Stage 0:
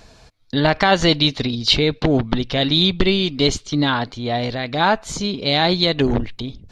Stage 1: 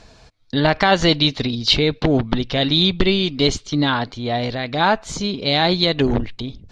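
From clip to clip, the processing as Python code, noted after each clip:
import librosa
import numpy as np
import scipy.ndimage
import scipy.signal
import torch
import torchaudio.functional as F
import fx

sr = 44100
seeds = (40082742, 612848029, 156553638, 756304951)

y = scipy.signal.sosfilt(scipy.signal.butter(2, 8100.0, 'lowpass', fs=sr, output='sos'), x)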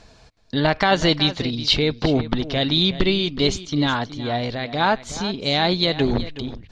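y = x + 10.0 ** (-14.5 / 20.0) * np.pad(x, (int(370 * sr / 1000.0), 0))[:len(x)]
y = y * librosa.db_to_amplitude(-2.5)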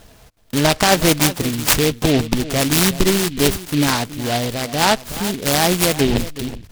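y = fx.noise_mod_delay(x, sr, seeds[0], noise_hz=2900.0, depth_ms=0.11)
y = y * librosa.db_to_amplitude(3.5)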